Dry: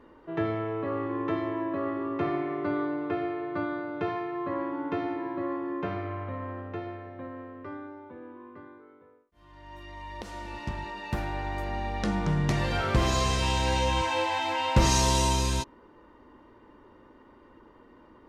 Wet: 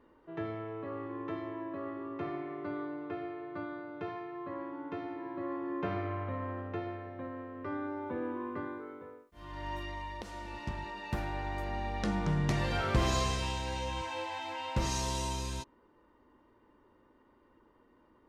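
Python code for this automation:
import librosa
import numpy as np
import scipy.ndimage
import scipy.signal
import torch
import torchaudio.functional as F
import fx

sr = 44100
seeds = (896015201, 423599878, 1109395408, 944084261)

y = fx.gain(x, sr, db=fx.line((5.09, -9.0), (5.97, -1.5), (7.49, -1.5), (8.13, 8.5), (9.67, 8.5), (10.24, -4.0), (13.16, -4.0), (13.65, -10.5)))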